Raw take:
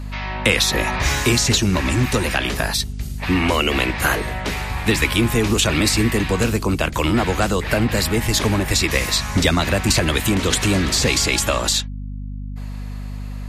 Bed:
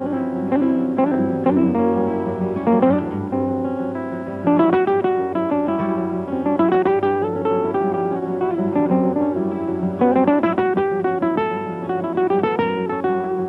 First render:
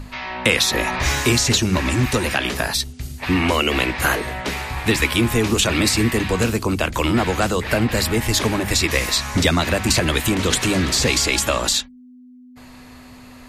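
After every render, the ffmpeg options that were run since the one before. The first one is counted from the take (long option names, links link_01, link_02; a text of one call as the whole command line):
ffmpeg -i in.wav -af "bandreject=frequency=50:width_type=h:width=6,bandreject=frequency=100:width_type=h:width=6,bandreject=frequency=150:width_type=h:width=6,bandreject=frequency=200:width_type=h:width=6" out.wav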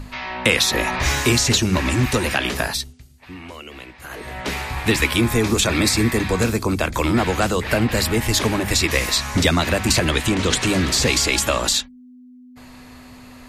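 ffmpeg -i in.wav -filter_complex "[0:a]asettb=1/sr,asplit=3[link_01][link_02][link_03];[link_01]atrim=end=5.174[link_04];[link_02]atrim=start=5.17:end=7.19,asetpts=PTS-STARTPTS,afade=type=in:duration=0.004:curve=qsin,afade=type=out:start_time=2.016:duration=0.004:curve=qsin,bandreject=frequency=2900:width=7.4[link_05];[link_03]atrim=start=7.186[link_06];[link_04][link_05]acrossfade=duration=0.004:curve1=hsin:curve2=qsin[link_07];[link_07][link_06]acrossfade=duration=0.004:curve1=qsin:curve2=hsin,asettb=1/sr,asplit=3[link_08][link_09][link_10];[link_08]atrim=end=10.104[link_11];[link_09]atrim=start=10.1:end=10.67,asetpts=PTS-STARTPTS,afade=type=in:duration=0.004:curve=qsin,afade=type=out:start_time=0.566:duration=0.004:curve=qsin,lowpass=8800[link_12];[link_10]atrim=start=10.666[link_13];[link_11][link_12]acrossfade=duration=0.004:curve1=hsin:curve2=qsin[link_14];[link_14][link_13]acrossfade=duration=0.004:curve1=qsin:curve2=hsin,asplit=3[link_15][link_16][link_17];[link_15]atrim=end=3.05,asetpts=PTS-STARTPTS,afade=type=out:start_time=2.62:duration=0.43:silence=0.11885[link_18];[link_16]atrim=start=3.05:end=4.09,asetpts=PTS-STARTPTS,volume=-18.5dB[link_19];[link_17]atrim=start=4.09,asetpts=PTS-STARTPTS,afade=type=in:duration=0.43:silence=0.11885[link_20];[link_18][link_19][link_20]concat=n=3:v=0:a=1" out.wav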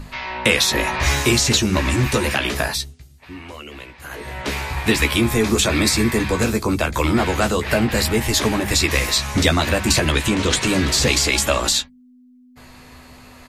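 ffmpeg -i in.wav -filter_complex "[0:a]asplit=2[link_01][link_02];[link_02]adelay=14,volume=-7dB[link_03];[link_01][link_03]amix=inputs=2:normalize=0" out.wav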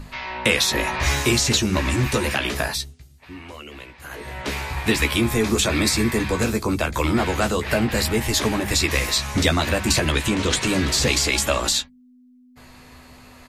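ffmpeg -i in.wav -af "volume=-2.5dB" out.wav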